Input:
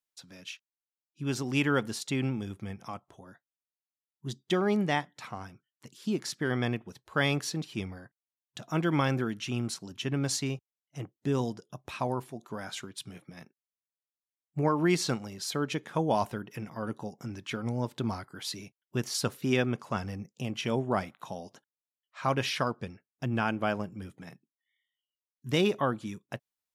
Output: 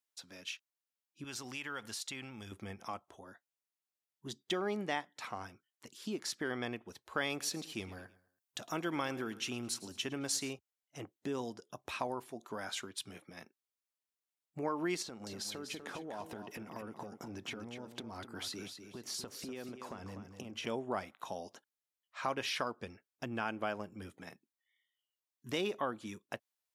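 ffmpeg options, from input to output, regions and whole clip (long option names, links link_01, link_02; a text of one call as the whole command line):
ffmpeg -i in.wav -filter_complex "[0:a]asettb=1/sr,asplit=3[link_01][link_02][link_03];[link_01]atrim=end=1.244[link_04];[link_02]atrim=start=1.24:end=2.52,asetpts=PTS-STARTPTS,afade=type=in:duration=0.004:curve=qsin,afade=type=out:start_time=1.276:duration=0.004:curve=qsin,equalizer=frequency=340:width=0.59:gain=-11,acompressor=threshold=-37dB:ratio=4:attack=3.2:release=140:knee=1:detection=peak[link_05];[link_03]atrim=start=2.516[link_06];[link_04][link_05]acrossfade=duration=0.004:curve1=hsin:curve2=qsin[link_07];[link_07][link_06]acrossfade=duration=0.004:curve1=qsin:curve2=hsin,asettb=1/sr,asplit=3[link_08][link_09][link_10];[link_08]atrim=end=7.304[link_11];[link_09]atrim=start=7.3:end=10.53,asetpts=PTS-STARTPTS,afade=type=in:duration=0.004:curve=qsin,afade=type=out:start_time=3.226:duration=0.004:curve=qsin,highshelf=frequency=7300:gain=7,aecho=1:1:108|216|324:0.112|0.046|0.0189,atrim=end_sample=142443[link_12];[link_10]atrim=start=10.526[link_13];[link_11][link_12]acrossfade=duration=0.004:curve1=hsin:curve2=qsin[link_14];[link_14][link_13]acrossfade=duration=0.004:curve1=qsin:curve2=hsin,asettb=1/sr,asplit=3[link_15][link_16][link_17];[link_15]atrim=end=15.024[link_18];[link_16]atrim=start=15.02:end=20.67,asetpts=PTS-STARTPTS,afade=type=in:duration=0.004:curve=qsin,afade=type=out:start_time=5.646:duration=0.004:curve=qsin,equalizer=frequency=230:width=0.35:gain=6.5,acompressor=threshold=-36dB:ratio=20:attack=3.2:release=140:knee=1:detection=peak,aecho=1:1:246|492|738:0.376|0.0902|0.0216,atrim=end_sample=249165[link_19];[link_17]atrim=start=20.666[link_20];[link_18][link_19]acrossfade=duration=0.004:curve1=hsin:curve2=qsin[link_21];[link_21][link_20]acrossfade=duration=0.004:curve1=qsin:curve2=hsin,highpass=62,acompressor=threshold=-35dB:ratio=2,equalizer=frequency=140:width=1.3:gain=-12.5" out.wav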